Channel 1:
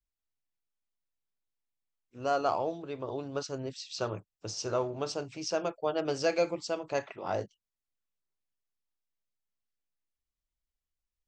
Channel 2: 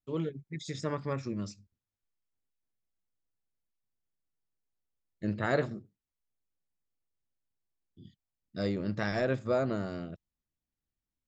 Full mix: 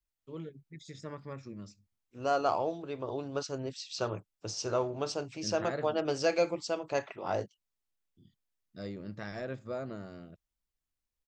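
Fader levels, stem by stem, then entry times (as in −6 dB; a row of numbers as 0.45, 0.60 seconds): 0.0, −9.0 decibels; 0.00, 0.20 seconds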